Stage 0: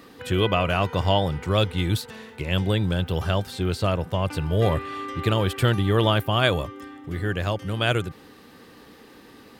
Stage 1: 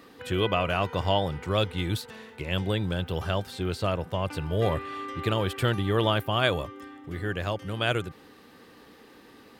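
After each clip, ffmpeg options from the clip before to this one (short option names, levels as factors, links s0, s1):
-af "bass=f=250:g=-3,treble=f=4000:g=-2,volume=0.708"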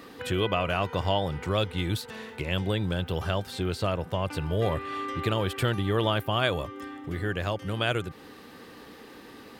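-af "acompressor=threshold=0.0126:ratio=1.5,volume=1.78"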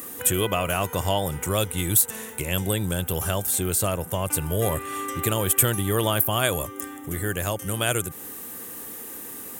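-af "aexciter=amount=11.3:drive=7.7:freq=6800,volume=1.26"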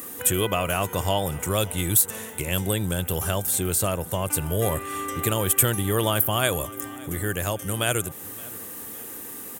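-af "aecho=1:1:569|1138|1707:0.0794|0.0342|0.0147"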